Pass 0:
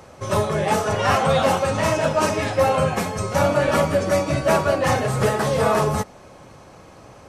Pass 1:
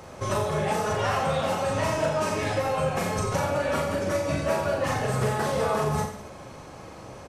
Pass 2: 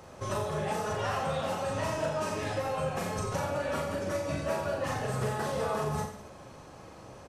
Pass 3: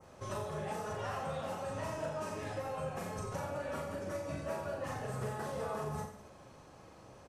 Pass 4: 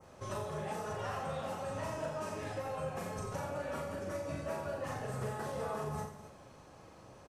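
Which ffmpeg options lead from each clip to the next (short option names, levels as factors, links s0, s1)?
-filter_complex "[0:a]acompressor=threshold=0.0562:ratio=6,asplit=2[s0][s1];[s1]aecho=0:1:40|86|138.9|199.7|269.7:0.631|0.398|0.251|0.158|0.1[s2];[s0][s2]amix=inputs=2:normalize=0"
-af "bandreject=f=2200:w=19,volume=0.501"
-af "adynamicequalizer=threshold=0.00251:dfrequency=3800:dqfactor=0.87:tfrequency=3800:tqfactor=0.87:attack=5:release=100:ratio=0.375:range=2:mode=cutabove:tftype=bell,volume=0.447"
-af "aecho=1:1:247:0.168"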